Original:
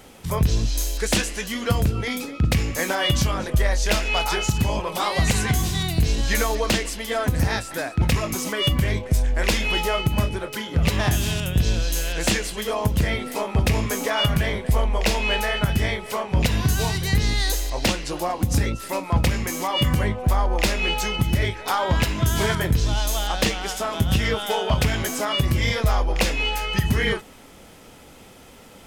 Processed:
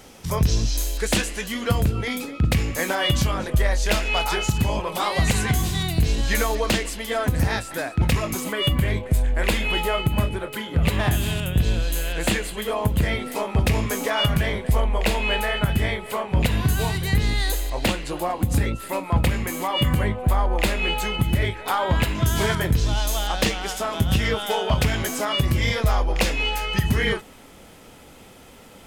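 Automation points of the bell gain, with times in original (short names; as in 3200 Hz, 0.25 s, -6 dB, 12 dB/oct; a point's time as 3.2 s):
bell 5600 Hz 0.5 oct
+5.5 dB
from 0.77 s -4 dB
from 8.4 s -12.5 dB
from 13.03 s -4 dB
from 14.8 s -11 dB
from 22.15 s -2 dB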